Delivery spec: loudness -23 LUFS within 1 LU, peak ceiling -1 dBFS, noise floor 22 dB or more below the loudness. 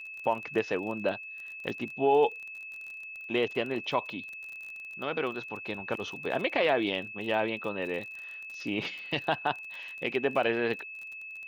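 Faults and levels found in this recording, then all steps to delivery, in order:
tick rate 31 per s; steady tone 2.6 kHz; tone level -40 dBFS; loudness -31.5 LUFS; peak level -13.0 dBFS; loudness target -23.0 LUFS
-> de-click; band-stop 2.6 kHz, Q 30; trim +8.5 dB

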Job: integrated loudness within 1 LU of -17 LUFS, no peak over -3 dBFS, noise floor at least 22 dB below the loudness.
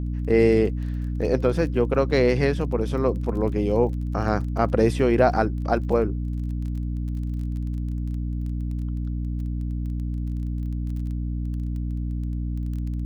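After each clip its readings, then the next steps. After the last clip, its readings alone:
tick rate 20 per s; hum 60 Hz; highest harmonic 300 Hz; hum level -25 dBFS; loudness -25.0 LUFS; peak level -5.5 dBFS; loudness target -17.0 LUFS
-> de-click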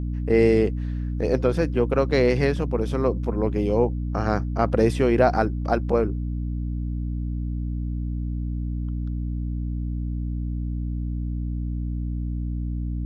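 tick rate 0 per s; hum 60 Hz; highest harmonic 300 Hz; hum level -25 dBFS
-> de-hum 60 Hz, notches 5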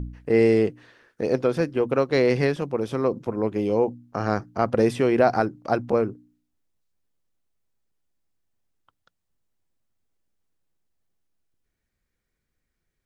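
hum not found; loudness -23.5 LUFS; peak level -5.5 dBFS; loudness target -17.0 LUFS
-> trim +6.5 dB; peak limiter -3 dBFS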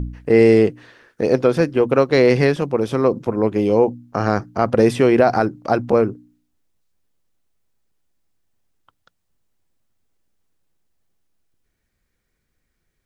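loudness -17.5 LUFS; peak level -3.0 dBFS; noise floor -73 dBFS

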